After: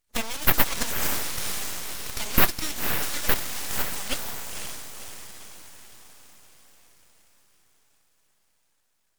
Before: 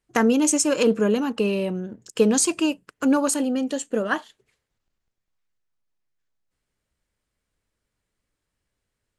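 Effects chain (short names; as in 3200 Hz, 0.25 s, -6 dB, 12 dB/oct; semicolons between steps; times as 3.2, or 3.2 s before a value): bin magnitudes rounded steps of 15 dB; high shelf 3800 Hz +3.5 dB; in parallel at -9.5 dB: wrapped overs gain 22 dB; on the sum: passive tone stack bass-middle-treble 10-0-10; on a send: diffused feedback echo 0.517 s, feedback 54%, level -5 dB; on the sum: full-wave rectifier; gain +4.5 dB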